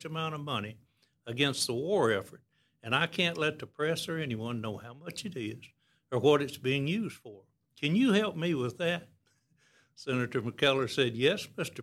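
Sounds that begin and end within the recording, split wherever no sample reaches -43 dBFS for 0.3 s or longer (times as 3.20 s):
1.27–2.35 s
2.84–5.66 s
6.12–7.36 s
7.78–9.03 s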